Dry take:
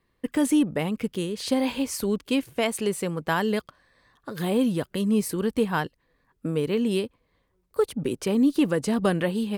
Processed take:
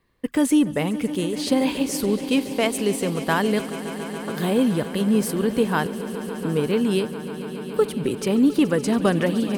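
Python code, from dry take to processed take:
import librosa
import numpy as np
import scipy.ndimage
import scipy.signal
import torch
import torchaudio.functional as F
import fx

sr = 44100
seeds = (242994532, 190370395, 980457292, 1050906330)

y = fx.echo_swell(x, sr, ms=141, loudest=5, wet_db=-17)
y = y * librosa.db_to_amplitude(3.0)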